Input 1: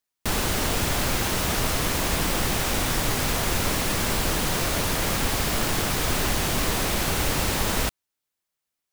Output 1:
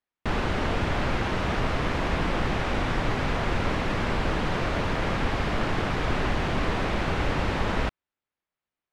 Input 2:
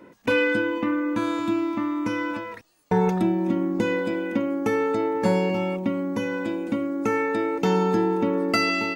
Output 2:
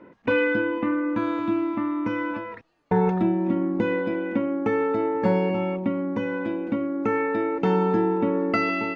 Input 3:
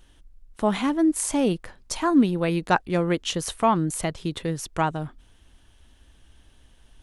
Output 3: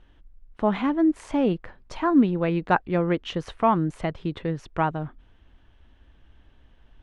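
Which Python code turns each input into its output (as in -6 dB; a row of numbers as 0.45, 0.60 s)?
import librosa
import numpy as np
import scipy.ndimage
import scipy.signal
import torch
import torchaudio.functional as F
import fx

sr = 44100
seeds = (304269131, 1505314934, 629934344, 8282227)

y = scipy.signal.sosfilt(scipy.signal.butter(2, 2400.0, 'lowpass', fs=sr, output='sos'), x)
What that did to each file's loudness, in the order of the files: -3.5, 0.0, -0.5 LU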